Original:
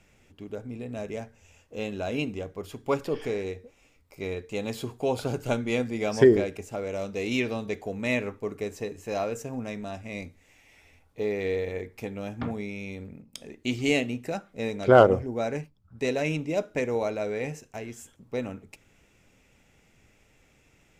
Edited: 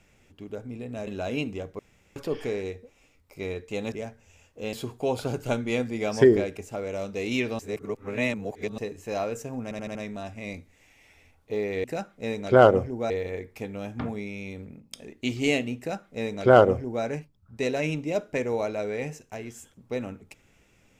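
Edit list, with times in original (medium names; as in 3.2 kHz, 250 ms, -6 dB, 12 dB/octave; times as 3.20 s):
1.07–1.88 s: move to 4.73 s
2.60–2.97 s: room tone
7.59–8.78 s: reverse
9.63 s: stutter 0.08 s, 5 plays
14.20–15.46 s: copy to 11.52 s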